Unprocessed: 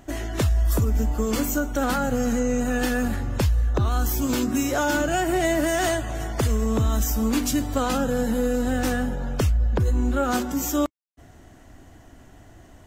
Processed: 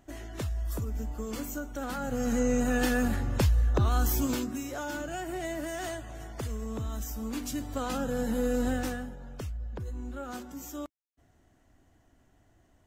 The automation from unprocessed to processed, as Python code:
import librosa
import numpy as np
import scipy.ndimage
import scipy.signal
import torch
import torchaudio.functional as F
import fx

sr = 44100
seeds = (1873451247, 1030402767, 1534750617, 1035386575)

y = fx.gain(x, sr, db=fx.line((1.9, -12.0), (2.43, -3.0), (4.19, -3.0), (4.6, -13.0), (7.22, -13.0), (8.66, -4.0), (9.16, -16.0)))